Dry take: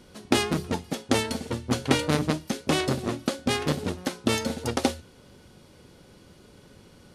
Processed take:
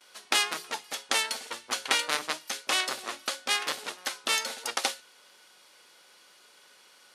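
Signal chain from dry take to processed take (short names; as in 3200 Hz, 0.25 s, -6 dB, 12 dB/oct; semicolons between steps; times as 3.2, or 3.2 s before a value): gate with hold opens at -44 dBFS; HPF 1100 Hz 12 dB/oct; gain +3 dB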